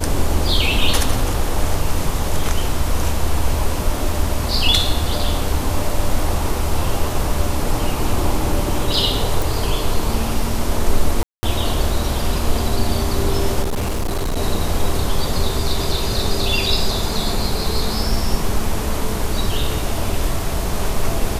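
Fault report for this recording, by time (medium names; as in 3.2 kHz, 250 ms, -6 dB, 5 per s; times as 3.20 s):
9.42 s: pop
11.23–11.43 s: dropout 200 ms
13.62–14.38 s: clipped -17 dBFS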